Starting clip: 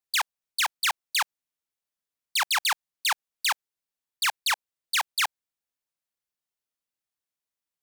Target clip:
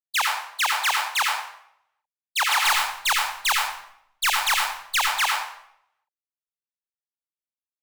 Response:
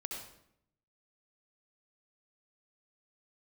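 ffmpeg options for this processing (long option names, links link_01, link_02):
-filter_complex "[0:a]agate=range=-33dB:threshold=-19dB:ratio=3:detection=peak,asplit=3[link_01][link_02][link_03];[link_01]afade=type=out:start_time=2.62:duration=0.02[link_04];[link_02]highshelf=frequency=3800:gain=7.5,afade=type=in:start_time=2.62:duration=0.02,afade=type=out:start_time=4.98:duration=0.02[link_05];[link_03]afade=type=in:start_time=4.98:duration=0.02[link_06];[link_04][link_05][link_06]amix=inputs=3:normalize=0,aeval=exprs='0.188*(cos(1*acos(clip(val(0)/0.188,-1,1)))-cos(1*PI/2))+0.0422*(cos(5*acos(clip(val(0)/0.188,-1,1)))-cos(5*PI/2))':channel_layout=same[link_07];[1:a]atrim=start_sample=2205[link_08];[link_07][link_08]afir=irnorm=-1:irlink=0,volume=5.5dB"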